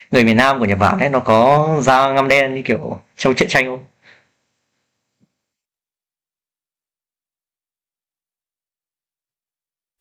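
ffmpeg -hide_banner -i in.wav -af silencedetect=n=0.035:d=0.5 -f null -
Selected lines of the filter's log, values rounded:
silence_start: 3.80
silence_end: 10.00 | silence_duration: 6.21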